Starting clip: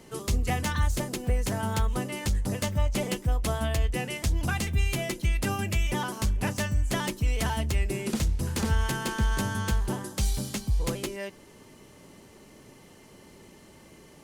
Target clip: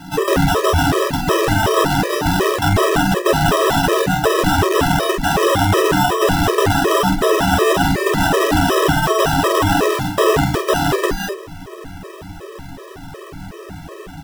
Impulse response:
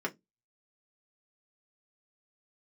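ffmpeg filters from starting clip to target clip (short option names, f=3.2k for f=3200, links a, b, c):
-filter_complex "[0:a]asubboost=boost=4:cutoff=110,acrusher=samples=20:mix=1:aa=0.000001,aeval=exprs='(mod(10.6*val(0)+1,2)-1)/10.6':c=same,aecho=1:1:11|47:0.473|0.447,asplit=2[a][b];[1:a]atrim=start_sample=2205[c];[b][c]afir=irnorm=-1:irlink=0,volume=-5.5dB[d];[a][d]amix=inputs=2:normalize=0,alimiter=level_in=18.5dB:limit=-1dB:release=50:level=0:latency=1,afftfilt=real='re*gt(sin(2*PI*2.7*pts/sr)*(1-2*mod(floor(b*sr/1024/330),2)),0)':imag='im*gt(sin(2*PI*2.7*pts/sr)*(1-2*mod(floor(b*sr/1024/330),2)),0)':win_size=1024:overlap=0.75,volume=-2.5dB"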